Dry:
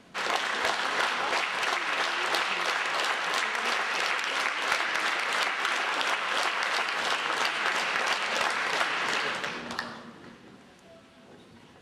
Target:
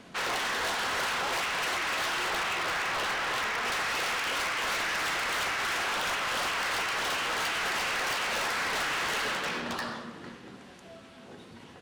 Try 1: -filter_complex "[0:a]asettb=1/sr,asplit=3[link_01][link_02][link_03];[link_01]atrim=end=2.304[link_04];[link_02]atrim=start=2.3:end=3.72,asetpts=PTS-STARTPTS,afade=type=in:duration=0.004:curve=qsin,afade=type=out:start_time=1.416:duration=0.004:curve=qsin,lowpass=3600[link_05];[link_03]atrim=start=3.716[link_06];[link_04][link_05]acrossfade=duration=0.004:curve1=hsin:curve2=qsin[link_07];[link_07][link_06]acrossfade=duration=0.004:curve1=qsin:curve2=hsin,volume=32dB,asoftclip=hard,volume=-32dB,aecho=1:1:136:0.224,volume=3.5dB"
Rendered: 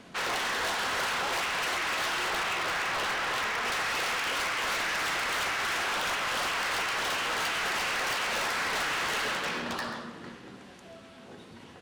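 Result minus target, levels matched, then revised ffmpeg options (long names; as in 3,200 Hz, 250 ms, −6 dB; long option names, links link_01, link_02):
echo-to-direct +9 dB
-filter_complex "[0:a]asettb=1/sr,asplit=3[link_01][link_02][link_03];[link_01]atrim=end=2.304[link_04];[link_02]atrim=start=2.3:end=3.72,asetpts=PTS-STARTPTS,afade=type=in:duration=0.004:curve=qsin,afade=type=out:start_time=1.416:duration=0.004:curve=qsin,lowpass=3600[link_05];[link_03]atrim=start=3.716[link_06];[link_04][link_05]acrossfade=duration=0.004:curve1=hsin:curve2=qsin[link_07];[link_07][link_06]acrossfade=duration=0.004:curve1=qsin:curve2=hsin,volume=32dB,asoftclip=hard,volume=-32dB,aecho=1:1:136:0.0794,volume=3.5dB"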